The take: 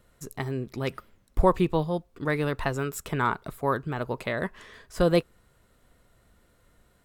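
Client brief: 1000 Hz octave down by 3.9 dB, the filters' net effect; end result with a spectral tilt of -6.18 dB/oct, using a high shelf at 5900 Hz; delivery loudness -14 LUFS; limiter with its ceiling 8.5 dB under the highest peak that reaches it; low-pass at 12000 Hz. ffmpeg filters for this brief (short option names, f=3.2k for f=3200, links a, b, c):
-af "lowpass=12k,equalizer=f=1k:t=o:g=-4.5,highshelf=f=5.9k:g=-7.5,volume=18dB,alimiter=limit=0dB:level=0:latency=1"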